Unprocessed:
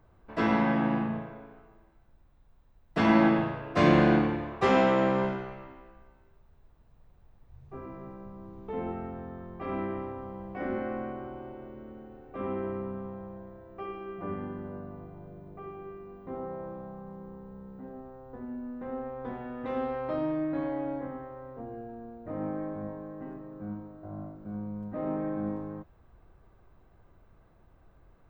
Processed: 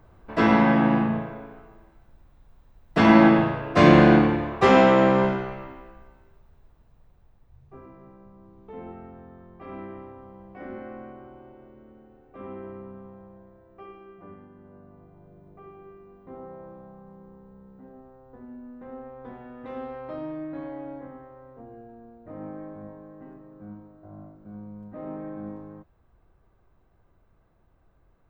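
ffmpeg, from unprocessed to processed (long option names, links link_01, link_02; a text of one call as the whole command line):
ffmpeg -i in.wav -af "volume=16dB,afade=type=out:start_time=5.68:duration=2.27:silence=0.237137,afade=type=out:start_time=13.85:duration=0.64:silence=0.421697,afade=type=in:start_time=14.49:duration=1:silence=0.354813" out.wav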